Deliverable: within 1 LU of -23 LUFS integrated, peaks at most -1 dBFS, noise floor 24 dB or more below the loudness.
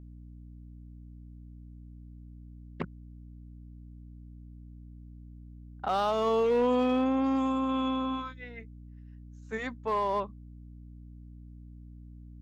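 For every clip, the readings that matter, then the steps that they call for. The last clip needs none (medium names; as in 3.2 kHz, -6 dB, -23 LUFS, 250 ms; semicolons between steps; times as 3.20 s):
clipped samples 0.3%; clipping level -21.0 dBFS; hum 60 Hz; highest harmonic 300 Hz; hum level -45 dBFS; loudness -29.5 LUFS; peak level -21.0 dBFS; loudness target -23.0 LUFS
-> clip repair -21 dBFS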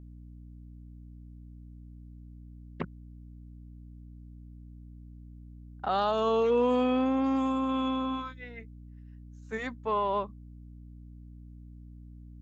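clipped samples 0.0%; hum 60 Hz; highest harmonic 300 Hz; hum level -45 dBFS
-> hum notches 60/120/180/240/300 Hz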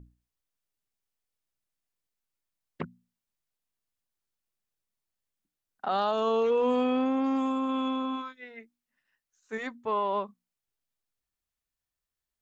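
hum not found; loudness -28.5 LUFS; peak level -17.5 dBFS; loudness target -23.0 LUFS
-> trim +5.5 dB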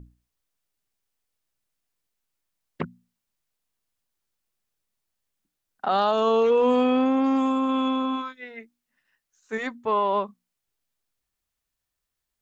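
loudness -23.0 LUFS; peak level -12.0 dBFS; noise floor -83 dBFS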